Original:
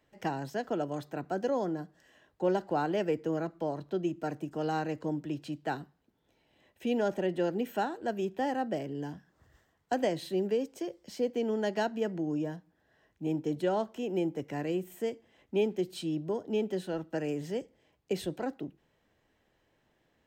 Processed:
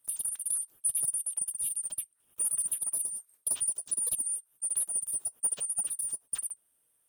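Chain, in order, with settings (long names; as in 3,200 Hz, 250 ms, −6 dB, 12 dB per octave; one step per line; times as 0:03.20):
band-splitting scrambler in four parts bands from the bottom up 3412
change of speed 2.86×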